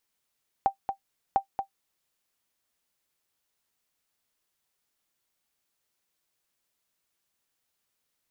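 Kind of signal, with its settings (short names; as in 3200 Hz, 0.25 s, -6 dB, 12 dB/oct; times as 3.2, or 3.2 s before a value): sonar ping 785 Hz, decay 0.10 s, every 0.70 s, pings 2, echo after 0.23 s, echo -7 dB -13 dBFS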